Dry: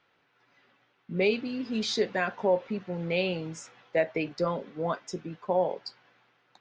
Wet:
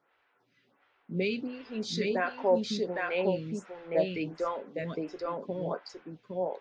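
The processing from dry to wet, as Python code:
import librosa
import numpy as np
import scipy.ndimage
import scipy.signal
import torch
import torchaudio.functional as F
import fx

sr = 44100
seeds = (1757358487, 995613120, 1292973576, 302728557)

p1 = fx.high_shelf(x, sr, hz=5300.0, db=-5.5)
p2 = p1 + fx.echo_single(p1, sr, ms=811, db=-3.0, dry=0)
y = fx.stagger_phaser(p2, sr, hz=1.4)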